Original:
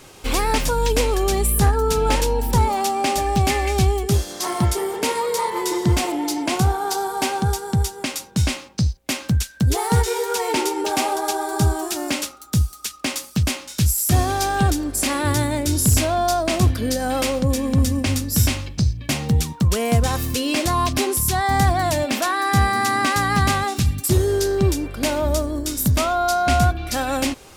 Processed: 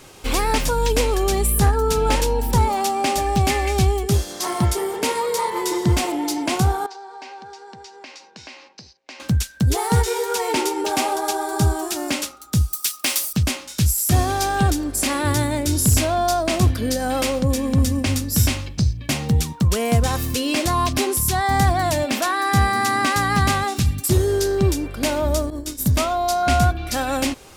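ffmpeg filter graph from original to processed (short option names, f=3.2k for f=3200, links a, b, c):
-filter_complex "[0:a]asettb=1/sr,asplit=3[a][b][c];[a]atrim=end=6.864[d];[b]atrim=start=6.86:end=9.2,asetpts=PTS-STARTPTS,afade=t=in:d=0.004:c=qsin,afade=t=out:st=2.336:d=0.004:c=qsin,highpass=500,equalizer=f=590:t=q:w=4:g=-4,equalizer=f=1.3k:t=q:w=4:g=-7,equalizer=f=3.4k:t=q:w=4:g=-7,lowpass=f=5.2k:w=0.5412,lowpass=f=5.2k:w=1.3066,acompressor=threshold=-40dB:ratio=2.5:attack=3.2:release=140:knee=1:detection=peak[e];[c]atrim=start=9.196[f];[d][e]acrossfade=d=0.004:c1=hsin:c2=qsin[g];[g][f]acrossfade=d=0.004:c1=qsin:c2=hsin,asettb=1/sr,asplit=3[h][i][j];[h]atrim=end=12.734[k];[i]atrim=start=12.73:end=13.33,asetpts=PTS-STARTPTS,afade=t=in:d=0.004:c=qsin,afade=t=out:st=0.596:d=0.004:c=qsin,acrossover=split=4300[l][m];[m]acompressor=threshold=-32dB:ratio=4:attack=1:release=60[n];[l][n]amix=inputs=2:normalize=0,aemphasis=mode=production:type=riaa,bandreject=f=6.8k:w=20[o];[j]atrim=start=13.326[p];[k][o]acrossfade=d=0.004:c1=hsin:c2=qsin[q];[q][p]acrossfade=d=0.004:c1=qsin:c2=hsin,asettb=1/sr,asplit=3[r][s][t];[r]atrim=end=25.504[u];[s]atrim=start=25.5:end=26.43,asetpts=PTS-STARTPTS,afade=t=in:d=0.004:c=qsin,afade=t=out:st=0.926:d=0.004:c=qsin,agate=range=-33dB:threshold=-21dB:ratio=3:release=100:detection=peak,bandreject=f=1.4k:w=20[v];[t]atrim=start=26.426[w];[u][v]acrossfade=d=0.004:c1=hsin:c2=qsin[x];[x][w]acrossfade=d=0.004:c1=qsin:c2=hsin"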